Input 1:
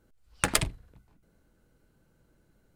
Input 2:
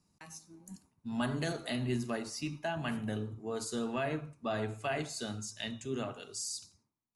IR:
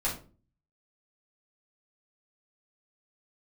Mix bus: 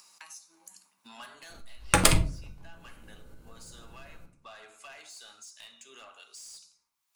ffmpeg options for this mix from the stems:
-filter_complex "[0:a]asoftclip=type=tanh:threshold=-5.5dB,adelay=1500,volume=3dB,asplit=2[a][b];[b]volume=-8dB[c];[1:a]highpass=1.2k,asoftclip=type=tanh:threshold=-39dB,volume=-2.5dB,afade=t=out:st=1.11:d=0.35:silence=0.354813,asplit=2[d][e];[e]volume=-14dB[f];[2:a]atrim=start_sample=2205[g];[c][f]amix=inputs=2:normalize=0[h];[h][g]afir=irnorm=-1:irlink=0[i];[a][d][i]amix=inputs=3:normalize=0,equalizer=f=1.8k:t=o:w=0.35:g=-3.5,acompressor=mode=upward:threshold=-40dB:ratio=2.5"

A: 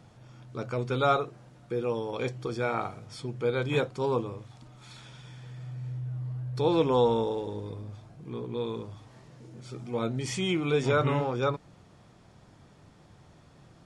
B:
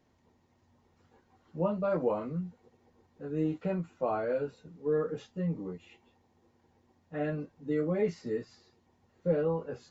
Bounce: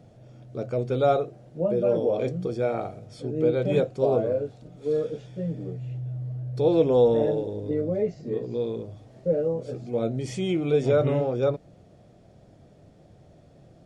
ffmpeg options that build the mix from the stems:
-filter_complex "[0:a]volume=-4.5dB[a];[1:a]volume=-5.5dB[b];[a][b]amix=inputs=2:normalize=0,lowshelf=f=790:t=q:w=3:g=6.5"

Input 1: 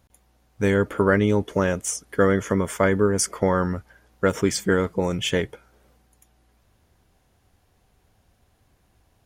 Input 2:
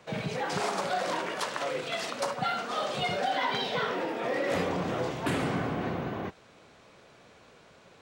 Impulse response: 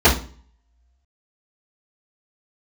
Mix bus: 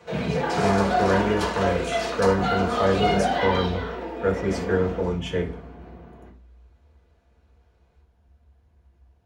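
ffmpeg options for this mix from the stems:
-filter_complex "[0:a]aemphasis=mode=reproduction:type=50kf,volume=-8.5dB,asplit=2[a][b];[b]volume=-22dB[c];[1:a]volume=-0.5dB,afade=t=out:st=3.33:d=0.44:silence=0.334965,afade=t=out:st=4.87:d=0.38:silence=0.251189,asplit=2[d][e];[e]volume=-18.5dB[f];[2:a]atrim=start_sample=2205[g];[c][f]amix=inputs=2:normalize=0[h];[h][g]afir=irnorm=-1:irlink=0[i];[a][d][i]amix=inputs=3:normalize=0"

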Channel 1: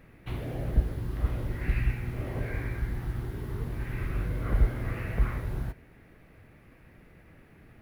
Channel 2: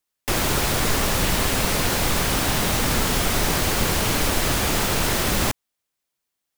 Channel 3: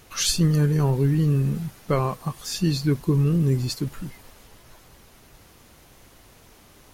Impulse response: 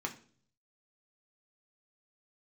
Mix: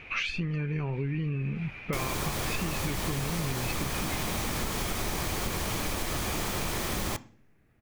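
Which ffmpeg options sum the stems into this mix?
-filter_complex "[0:a]volume=-12.5dB[a];[1:a]adelay=1650,volume=-9.5dB,asplit=2[b][c];[c]volume=-9dB[d];[2:a]acompressor=threshold=-27dB:ratio=6,lowpass=f=2.4k:t=q:w=11,volume=0dB,asplit=2[e][f];[f]apad=whole_len=344666[g];[a][g]sidechaincompress=threshold=-45dB:ratio=8:attack=16:release=1450[h];[3:a]atrim=start_sample=2205[i];[d][i]afir=irnorm=-1:irlink=0[j];[h][b][e][j]amix=inputs=4:normalize=0,acompressor=threshold=-27dB:ratio=6"

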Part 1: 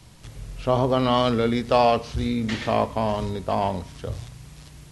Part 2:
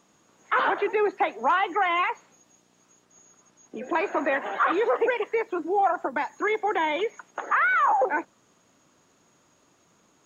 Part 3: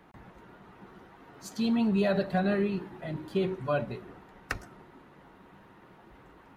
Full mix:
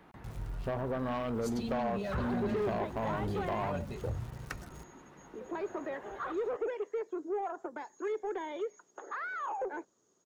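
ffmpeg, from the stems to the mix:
-filter_complex "[0:a]afwtdn=0.0398,aeval=exprs='val(0)*gte(abs(val(0)),0.00501)':c=same,acompressor=threshold=-26dB:ratio=6,volume=-1dB[a];[1:a]equalizer=f=400:t=o:w=0.67:g=11,equalizer=f=2.5k:t=o:w=0.67:g=-7,equalizer=f=6.3k:t=o:w=0.67:g=9,adelay=1600,volume=-15.5dB[b];[2:a]acompressor=threshold=-34dB:ratio=4,volume=-0.5dB[c];[a][b][c]amix=inputs=3:normalize=0,asoftclip=type=tanh:threshold=-27.5dB"

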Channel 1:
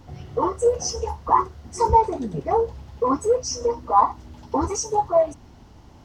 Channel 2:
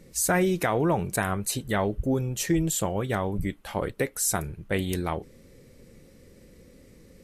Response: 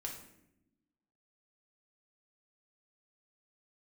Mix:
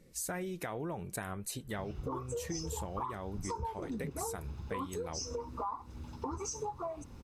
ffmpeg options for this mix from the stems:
-filter_complex "[0:a]acompressor=threshold=-26dB:ratio=2,aecho=1:1:0.8:0.49,adelay=1700,volume=-6dB[a];[1:a]volume=-9.5dB[b];[a][b]amix=inputs=2:normalize=0,acompressor=threshold=-35dB:ratio=6"

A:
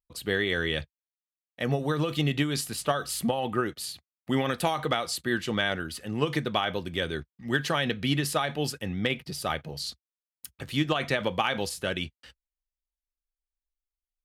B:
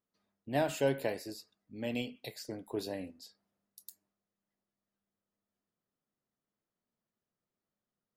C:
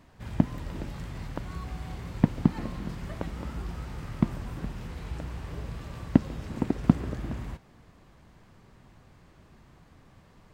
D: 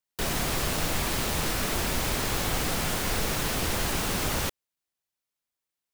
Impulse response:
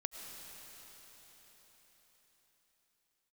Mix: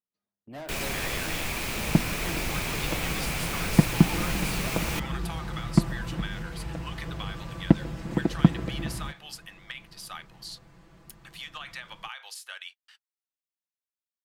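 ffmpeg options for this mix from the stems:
-filter_complex "[0:a]highpass=f=950:w=0.5412,highpass=f=950:w=1.3066,acompressor=threshold=-31dB:ratio=5,adelay=650,volume=-5dB[a];[1:a]agate=range=-8dB:threshold=-57dB:ratio=16:detection=peak,asoftclip=type=tanh:threshold=-33.5dB,volume=-3dB[b];[2:a]aecho=1:1:6:0.74,dynaudnorm=f=360:g=13:m=11.5dB,adelay=1550,volume=-0.5dB[c];[3:a]equalizer=f=2.4k:w=3.7:g=9.5,adelay=500,volume=-4.5dB[d];[a][b][c][d]amix=inputs=4:normalize=0"

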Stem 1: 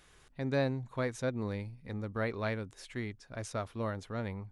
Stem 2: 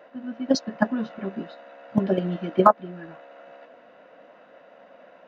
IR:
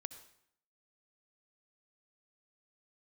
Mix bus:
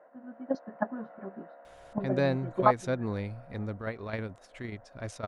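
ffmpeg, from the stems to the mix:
-filter_complex "[0:a]adelay=1650,volume=3dB[a];[1:a]firequalizer=gain_entry='entry(240,0);entry(720,7);entry(1800,1);entry(2800,-15)':delay=0.05:min_phase=1,volume=-12dB,asplit=2[b][c];[c]apad=whole_len=276226[d];[a][d]sidechaingate=range=-33dB:threshold=-57dB:ratio=16:detection=peak[e];[e][b]amix=inputs=2:normalize=0,highshelf=f=5.7k:g=-6"

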